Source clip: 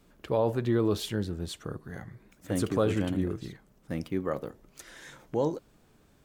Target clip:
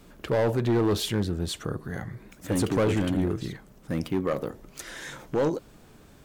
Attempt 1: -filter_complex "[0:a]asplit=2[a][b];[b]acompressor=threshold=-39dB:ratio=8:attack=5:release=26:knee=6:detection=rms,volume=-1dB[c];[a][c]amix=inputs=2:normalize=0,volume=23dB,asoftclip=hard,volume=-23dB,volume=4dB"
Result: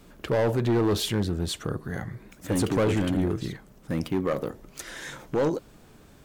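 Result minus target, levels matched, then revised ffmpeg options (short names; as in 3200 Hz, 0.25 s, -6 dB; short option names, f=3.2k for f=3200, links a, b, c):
compressor: peak gain reduction -5 dB
-filter_complex "[0:a]asplit=2[a][b];[b]acompressor=threshold=-45dB:ratio=8:attack=5:release=26:knee=6:detection=rms,volume=-1dB[c];[a][c]amix=inputs=2:normalize=0,volume=23dB,asoftclip=hard,volume=-23dB,volume=4dB"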